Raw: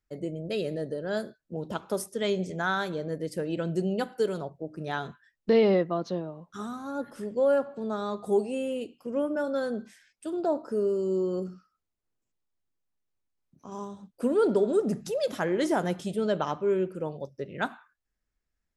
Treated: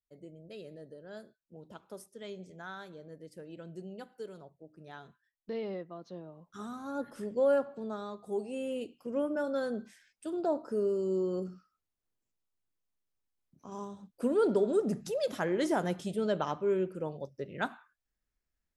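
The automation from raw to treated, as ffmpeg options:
-af "volume=6dB,afade=t=in:st=6.05:d=0.9:silence=0.223872,afade=t=out:st=7.55:d=0.7:silence=0.334965,afade=t=in:st=8.25:d=0.53:silence=0.354813"

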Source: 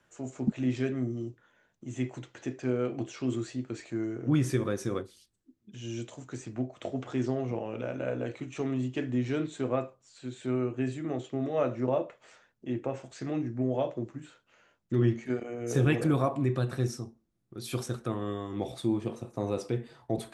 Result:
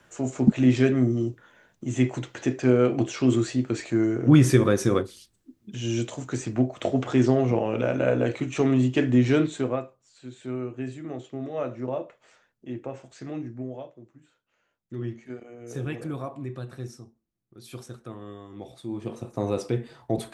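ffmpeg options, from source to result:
-af "volume=29dB,afade=t=out:st=9.36:d=0.47:silence=0.251189,afade=t=out:st=13.46:d=0.46:silence=0.237137,afade=t=in:st=13.92:d=1.26:silence=0.421697,afade=t=in:st=18.87:d=0.41:silence=0.266073"

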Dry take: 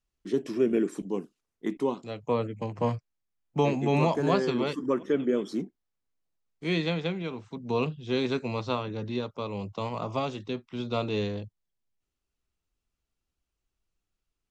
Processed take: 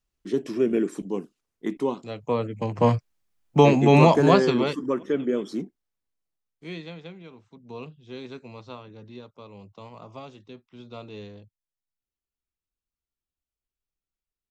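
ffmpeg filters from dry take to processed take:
-af "volume=9dB,afade=t=in:st=2.47:d=0.49:silence=0.446684,afade=t=out:st=4.14:d=0.74:silence=0.398107,afade=t=out:st=5.63:d=1.21:silence=0.251189"

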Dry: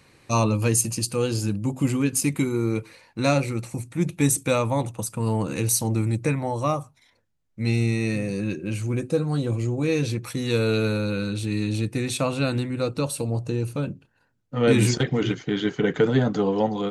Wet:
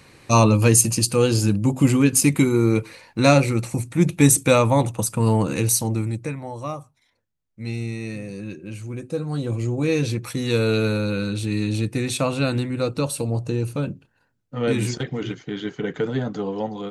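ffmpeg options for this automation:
-af "volume=14dB,afade=t=out:st=5.23:d=1.09:silence=0.251189,afade=t=in:st=8.99:d=0.81:silence=0.398107,afade=t=out:st=13.9:d=0.92:silence=0.473151"

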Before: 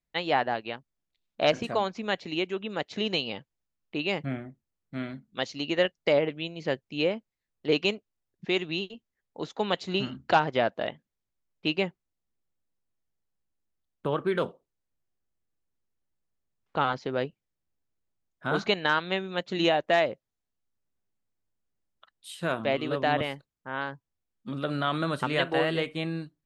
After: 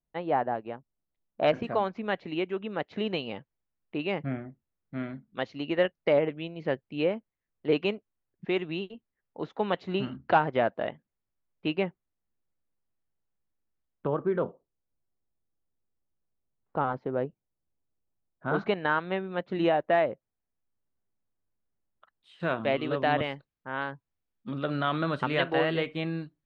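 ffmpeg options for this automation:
-af "asetnsamples=n=441:p=0,asendcmd='1.43 lowpass f 2100;14.07 lowpass f 1100;18.48 lowpass f 1700;22.4 lowpass f 3400',lowpass=1.1k"

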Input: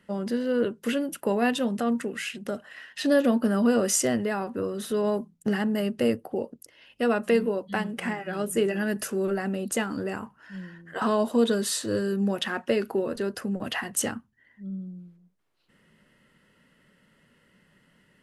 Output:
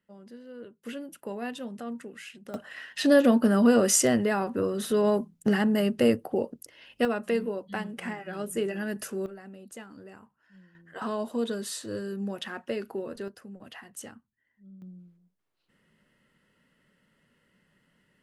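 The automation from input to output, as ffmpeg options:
-af "asetnsamples=n=441:p=0,asendcmd='0.85 volume volume -11dB;2.54 volume volume 2dB;7.05 volume volume -5dB;9.26 volume volume -16.5dB;10.75 volume volume -7.5dB;13.28 volume volume -15dB;14.82 volume volume -6dB',volume=-19dB"

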